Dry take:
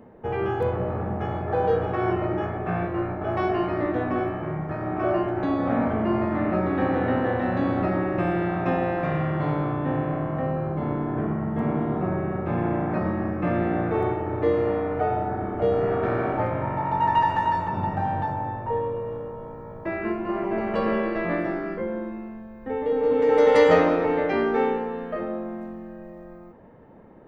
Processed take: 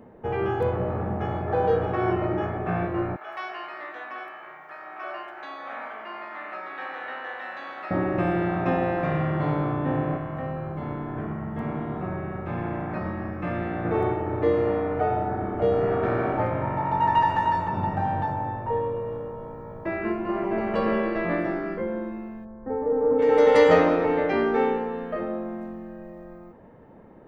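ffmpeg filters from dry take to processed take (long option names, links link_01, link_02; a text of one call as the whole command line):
ffmpeg -i in.wav -filter_complex "[0:a]asettb=1/sr,asplit=3[link_01][link_02][link_03];[link_01]atrim=end=3.164[link_04];[link_02]atrim=start=3.16:end=7.91,asetpts=PTS-STARTPTS,afade=type=in:duration=0.004:curve=qsin,afade=type=out:start_time=4.746:duration=0.004:curve=qsin,highpass=1300[link_05];[link_03]atrim=start=7.906[link_06];[link_04][link_05]acrossfade=duration=0.004:curve1=hsin:curve2=qsin[link_07];[link_07][link_06]acrossfade=duration=0.004:curve1=qsin:curve2=hsin,asettb=1/sr,asplit=3[link_08][link_09][link_10];[link_08]atrim=end=10.174[link_11];[link_09]atrim=start=10.17:end=13.85,asetpts=PTS-STARTPTS,afade=type=in:duration=0.004:curve=qsin,afade=type=out:start_time=3.676:duration=0.004:curve=qsin,equalizer=frequency=330:width=0.37:gain=-6.5[link_12];[link_10]atrim=start=13.846[link_13];[link_11][link_12]acrossfade=duration=0.004:curve1=hsin:curve2=qsin[link_14];[link_14][link_13]acrossfade=duration=0.004:curve1=qsin:curve2=hsin,asplit=3[link_15][link_16][link_17];[link_15]afade=type=out:start_time=22.44:duration=0.02[link_18];[link_16]lowpass=frequency=1400:width=0.5412,lowpass=frequency=1400:width=1.3066,afade=type=in:start_time=22.44:duration=0.02,afade=type=out:start_time=23.18:duration=0.02[link_19];[link_17]afade=type=in:start_time=23.18:duration=0.02[link_20];[link_18][link_19][link_20]amix=inputs=3:normalize=0" out.wav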